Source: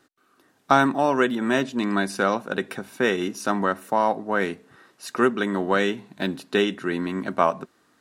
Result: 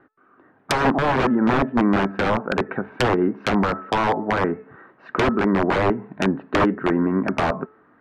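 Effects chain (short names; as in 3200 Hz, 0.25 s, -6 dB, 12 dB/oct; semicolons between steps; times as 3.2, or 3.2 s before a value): LPF 1800 Hz 24 dB/oct; de-hum 434.1 Hz, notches 6; vibrato 8.8 Hz 26 cents; wrapped overs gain 17 dB; treble ducked by the level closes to 1400 Hz, closed at -23.5 dBFS; gain +7.5 dB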